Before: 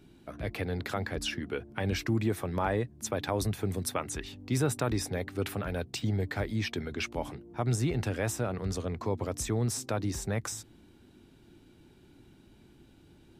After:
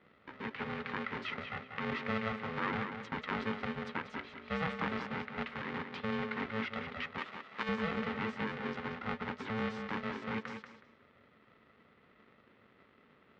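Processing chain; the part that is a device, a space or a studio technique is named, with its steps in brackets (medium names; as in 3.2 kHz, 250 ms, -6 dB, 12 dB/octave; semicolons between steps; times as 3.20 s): ring modulator pedal into a guitar cabinet (polarity switched at an audio rate 330 Hz; cabinet simulation 100–3500 Hz, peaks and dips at 220 Hz +4 dB, 660 Hz -9 dB, 1.3 kHz +6 dB, 2 kHz +7 dB); 7.18–7.69 s: tilt EQ +3 dB/octave; tape echo 186 ms, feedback 25%, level -6 dB, low-pass 5.4 kHz; trim -7.5 dB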